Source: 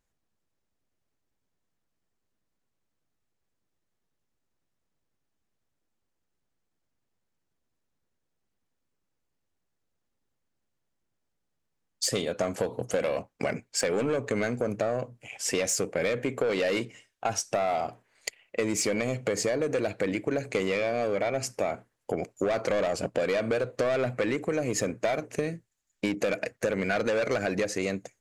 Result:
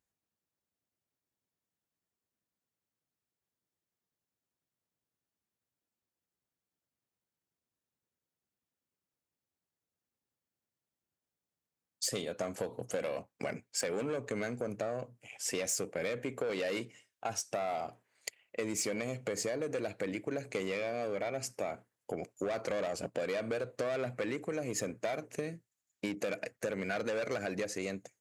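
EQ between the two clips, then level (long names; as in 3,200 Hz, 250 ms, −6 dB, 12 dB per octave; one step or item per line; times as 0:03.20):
high-pass filter 77 Hz
high-shelf EQ 9,200 Hz +7 dB
−8.0 dB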